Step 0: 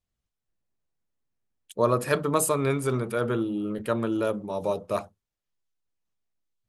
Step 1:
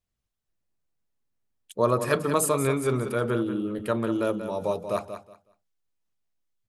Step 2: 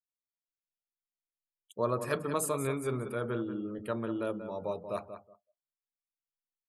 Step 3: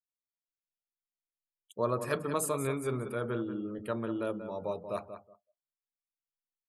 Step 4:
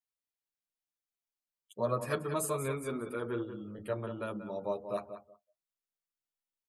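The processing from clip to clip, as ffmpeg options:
-af "aecho=1:1:185|370|555:0.316|0.0664|0.0139"
-af "afftdn=nr=29:nf=-49,volume=-8dB"
-af anull
-filter_complex "[0:a]asplit=2[a][b];[b]adelay=8.8,afreqshift=0.32[c];[a][c]amix=inputs=2:normalize=1,volume=1.5dB"

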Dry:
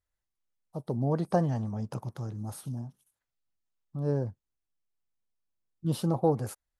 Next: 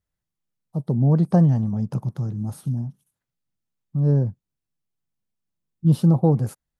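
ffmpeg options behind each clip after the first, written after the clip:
-af "equalizer=f=160:w=0.8:g=13.5"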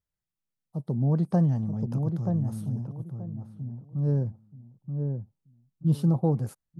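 -filter_complex "[0:a]asplit=2[a][b];[b]adelay=930,lowpass=f=880:p=1,volume=-4.5dB,asplit=2[c][d];[d]adelay=930,lowpass=f=880:p=1,volume=0.25,asplit=2[e][f];[f]adelay=930,lowpass=f=880:p=1,volume=0.25[g];[a][c][e][g]amix=inputs=4:normalize=0,volume=-6.5dB"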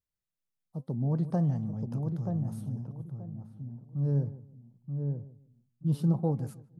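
-filter_complex "[0:a]asplit=2[a][b];[b]adelay=153,lowpass=f=860:p=1,volume=-15dB,asplit=2[c][d];[d]adelay=153,lowpass=f=860:p=1,volume=0.27,asplit=2[e][f];[f]adelay=153,lowpass=f=860:p=1,volume=0.27[g];[a][c][e][g]amix=inputs=4:normalize=0,flanger=delay=3.6:depth=3.7:regen=87:speed=1.1:shape=sinusoidal"

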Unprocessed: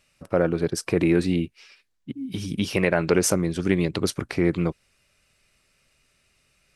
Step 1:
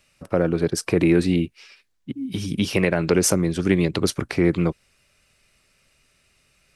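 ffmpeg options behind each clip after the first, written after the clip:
-filter_complex "[0:a]acrossover=split=400|3000[a][b][c];[b]acompressor=threshold=-24dB:ratio=6[d];[a][d][c]amix=inputs=3:normalize=0,volume=3dB"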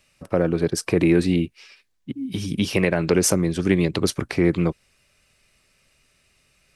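-af "bandreject=f=1.4k:w=23"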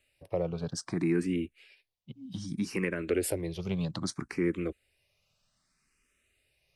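-filter_complex "[0:a]asplit=2[a][b];[b]afreqshift=0.63[c];[a][c]amix=inputs=2:normalize=1,volume=-8.5dB"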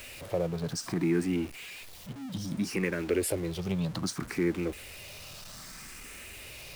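-af "aeval=exprs='val(0)+0.5*0.0106*sgn(val(0))':c=same"

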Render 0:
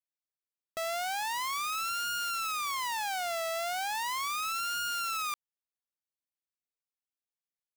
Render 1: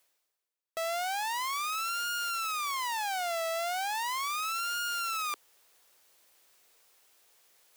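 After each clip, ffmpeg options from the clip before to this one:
-af "lowshelf=f=310:t=q:w=1.5:g=-8.5,areverse,acompressor=mode=upward:threshold=-40dB:ratio=2.5,areverse"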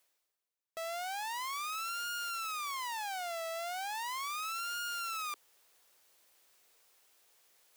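-af "alimiter=level_in=6dB:limit=-24dB:level=0:latency=1:release=26,volume=-6dB,volume=-3dB"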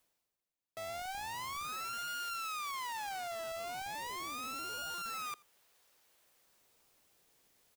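-filter_complex "[0:a]asplit=2[a][b];[b]acrusher=samples=17:mix=1:aa=0.000001:lfo=1:lforange=27.2:lforate=0.3,volume=-10dB[c];[a][c]amix=inputs=2:normalize=0,aecho=1:1:84:0.0631,volume=-3.5dB"

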